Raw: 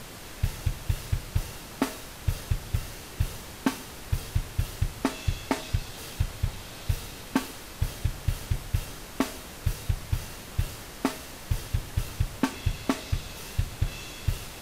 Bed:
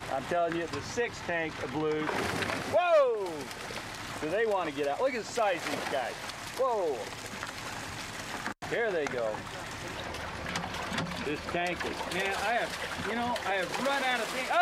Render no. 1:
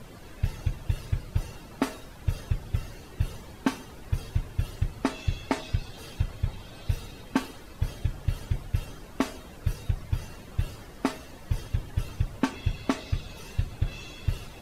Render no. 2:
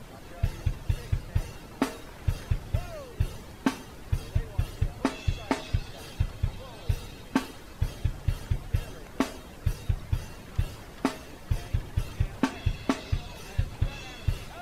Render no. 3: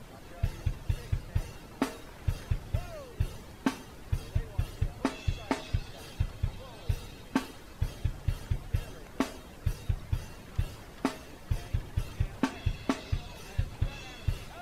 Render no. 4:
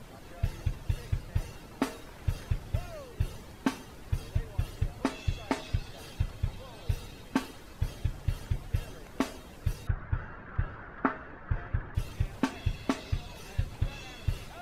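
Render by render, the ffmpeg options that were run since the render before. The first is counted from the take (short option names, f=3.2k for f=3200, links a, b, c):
-af "afftdn=nr=12:nf=-43"
-filter_complex "[1:a]volume=-19.5dB[a];[0:a][a]amix=inputs=2:normalize=0"
-af "volume=-3dB"
-filter_complex "[0:a]asettb=1/sr,asplit=3[a][b][c];[a]atrim=end=9.874[d];[b]atrim=start=9.87:end=11.95,asetpts=PTS-STARTPTS,afade=t=in:d=0.004:c=qsin,afade=t=out:st=2.076:d=0.004:c=qsin,lowpass=f=1.5k:t=q:w=4.1[e];[c]atrim=start=11.946[f];[d][e]acrossfade=d=0.004:c1=hsin:c2=qsin[g];[g][f]acrossfade=d=0.004:c1=qsin:c2=hsin"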